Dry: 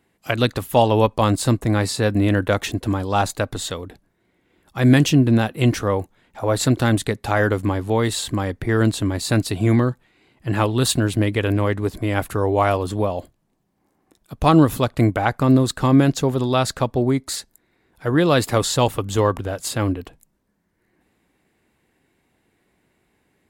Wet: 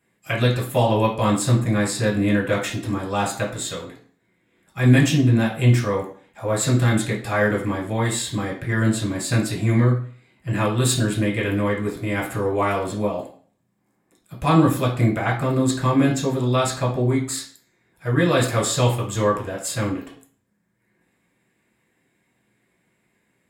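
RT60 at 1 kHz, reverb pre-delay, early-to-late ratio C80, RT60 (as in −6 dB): 0.45 s, 3 ms, 12.0 dB, 0.45 s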